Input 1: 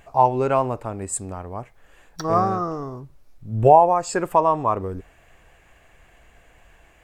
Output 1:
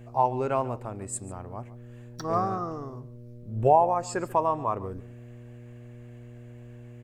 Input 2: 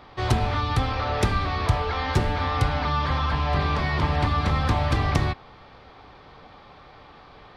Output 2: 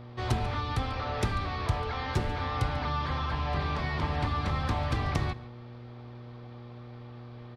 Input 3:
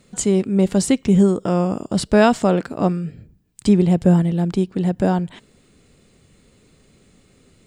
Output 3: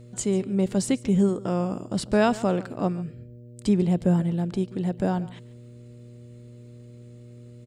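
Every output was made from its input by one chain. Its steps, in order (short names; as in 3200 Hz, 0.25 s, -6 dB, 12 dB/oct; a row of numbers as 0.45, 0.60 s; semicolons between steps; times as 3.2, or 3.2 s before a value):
buzz 120 Hz, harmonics 5, -39 dBFS -7 dB/oct; on a send: echo 0.142 s -18.5 dB; on the sum: gain -7 dB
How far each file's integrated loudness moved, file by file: -7.0, -7.0, -7.0 LU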